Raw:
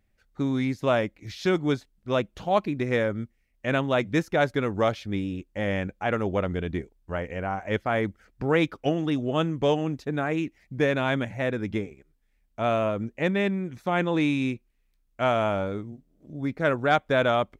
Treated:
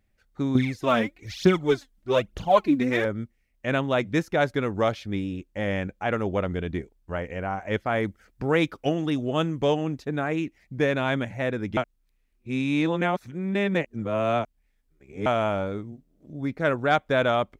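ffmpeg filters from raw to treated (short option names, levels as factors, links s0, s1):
-filter_complex "[0:a]asettb=1/sr,asplit=3[s0][s1][s2];[s0]atrim=end=0.554[s3];[s1]atrim=start=0.55:end=3.05,asetpts=PTS-STARTPTS,afade=t=in:d=0.004:c=qsin,afade=t=out:st=2.496:d=0.004:c=qsin,aphaser=in_gain=1:out_gain=1:delay=4.4:decay=0.69:speed=1.1:type=triangular[s4];[s2]atrim=start=3.046[s5];[s3][s4]acrossfade=d=0.004:c1=hsin:c2=qsin[s6];[s6][s5]acrossfade=d=0.004:c1=qsin:c2=hsin,asettb=1/sr,asplit=3[s7][s8][s9];[s7]atrim=end=8.004[s10];[s8]atrim=start=8:end=9.65,asetpts=PTS-STARTPTS,afade=t=in:d=0.004:c=qsin,afade=t=out:st=1.646:d=0.004:c=qsin,highshelf=f=5600:g=5[s11];[s9]atrim=start=9.646[s12];[s10][s11]acrossfade=d=0.004:c1=hsin:c2=qsin[s13];[s13][s12]acrossfade=d=0.004:c1=qsin:c2=hsin,asplit=3[s14][s15][s16];[s14]atrim=end=11.772[s17];[s15]atrim=start=11.768:end=15.262,asetpts=PTS-STARTPTS,areverse[s18];[s16]atrim=start=15.258[s19];[s17][s18]acrossfade=d=0.004:c1=hsin:c2=hsin[s20];[s20][s19]acrossfade=d=0.004:c1=hsin:c2=hsin"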